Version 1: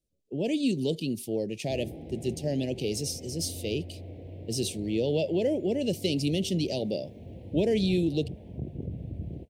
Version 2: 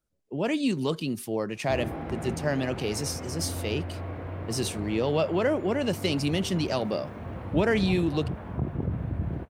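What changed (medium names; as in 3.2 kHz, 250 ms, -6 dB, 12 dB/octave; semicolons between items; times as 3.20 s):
background +5.5 dB; master: remove Chebyshev band-stop 520–3100 Hz, order 2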